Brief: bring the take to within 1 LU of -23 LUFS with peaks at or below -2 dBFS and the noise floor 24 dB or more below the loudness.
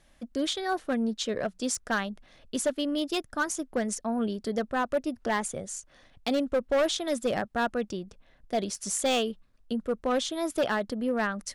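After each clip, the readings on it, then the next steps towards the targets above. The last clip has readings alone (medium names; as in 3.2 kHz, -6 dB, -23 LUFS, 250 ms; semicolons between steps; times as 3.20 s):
clipped samples 1.2%; clipping level -20.5 dBFS; loudness -30.0 LUFS; peak level -20.5 dBFS; loudness target -23.0 LUFS
-> clip repair -20.5 dBFS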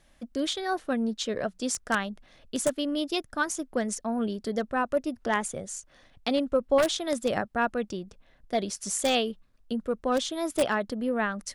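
clipped samples 0.0%; loudness -29.0 LUFS; peak level -11.5 dBFS; loudness target -23.0 LUFS
-> trim +6 dB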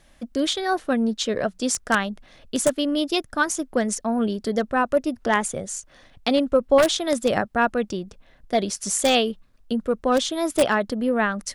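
loudness -23.0 LUFS; peak level -5.5 dBFS; noise floor -56 dBFS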